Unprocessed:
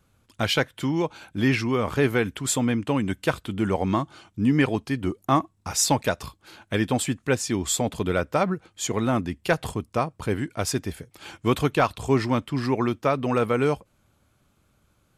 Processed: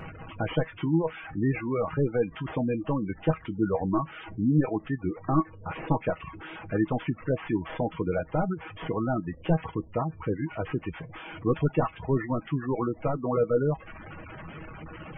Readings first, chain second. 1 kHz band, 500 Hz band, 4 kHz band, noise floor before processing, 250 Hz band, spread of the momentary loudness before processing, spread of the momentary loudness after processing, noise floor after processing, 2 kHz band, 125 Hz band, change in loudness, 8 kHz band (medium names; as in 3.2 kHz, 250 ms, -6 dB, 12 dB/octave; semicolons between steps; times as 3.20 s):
-5.5 dB, -3.0 dB, -16.0 dB, -67 dBFS, -3.5 dB, 7 LU, 13 LU, -49 dBFS, -9.0 dB, -2.0 dB, -4.0 dB, under -40 dB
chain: one-bit delta coder 16 kbps, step -32.5 dBFS; spectral gate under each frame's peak -20 dB strong; feedback comb 160 Hz, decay 0.15 s, harmonics all, mix 80%; reverb removal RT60 0.64 s; trim +6 dB